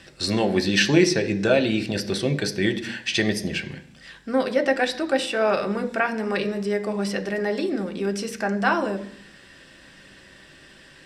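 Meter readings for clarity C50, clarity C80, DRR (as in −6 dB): 14.5 dB, 17.5 dB, 5.0 dB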